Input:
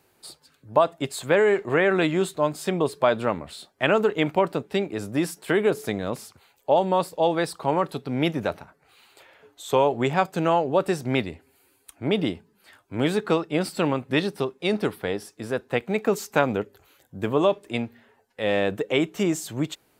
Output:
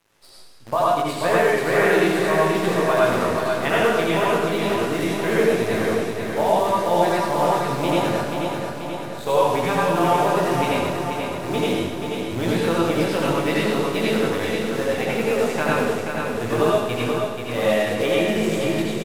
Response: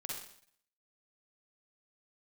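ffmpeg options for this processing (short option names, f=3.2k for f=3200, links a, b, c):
-filter_complex "[0:a]aemphasis=mode=reproduction:type=bsi,asetrate=46305,aresample=44100,lowshelf=f=460:g=-10,asplit=2[a][b];[b]acompressor=threshold=-30dB:ratio=6,volume=-1dB[c];[a][c]amix=inputs=2:normalize=0,flanger=delay=17:depth=4.4:speed=0.72,acrusher=bits=7:dc=4:mix=0:aa=0.000001,bandreject=f=50:t=h:w=6,bandreject=f=100:t=h:w=6,bandreject=f=150:t=h:w=6,bandreject=f=200:t=h:w=6,aecho=1:1:484|968|1452|1936|2420|2904|3388|3872:0.531|0.313|0.185|0.109|0.0643|0.038|0.0224|0.0132[d];[1:a]atrim=start_sample=2205,asetrate=26460,aresample=44100[e];[d][e]afir=irnorm=-1:irlink=0,volume=2.5dB"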